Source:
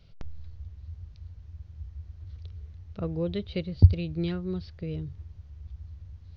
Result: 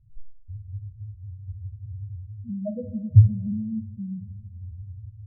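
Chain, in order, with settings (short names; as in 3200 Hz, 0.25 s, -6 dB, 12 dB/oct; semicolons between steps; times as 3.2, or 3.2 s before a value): varispeed +21%; loudest bins only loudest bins 1; two-slope reverb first 0.26 s, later 2.1 s, from -19 dB, DRR 3 dB; gain +7 dB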